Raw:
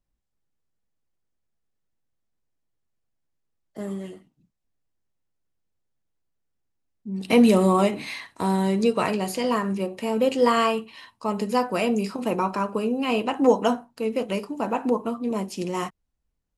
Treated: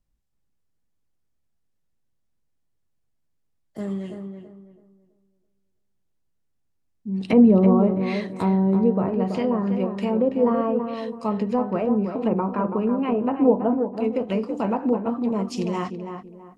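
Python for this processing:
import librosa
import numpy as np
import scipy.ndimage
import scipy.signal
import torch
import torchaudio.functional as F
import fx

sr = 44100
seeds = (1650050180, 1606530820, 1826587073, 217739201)

y = fx.env_lowpass_down(x, sr, base_hz=720.0, full_db=-19.0)
y = fx.bass_treble(y, sr, bass_db=5, treble_db=fx.steps((0.0, 1.0), (12.09, -8.0), (14.03, 9.0)))
y = fx.echo_tape(y, sr, ms=329, feedback_pct=34, wet_db=-5.5, lp_hz=1300.0, drive_db=7.0, wow_cents=7)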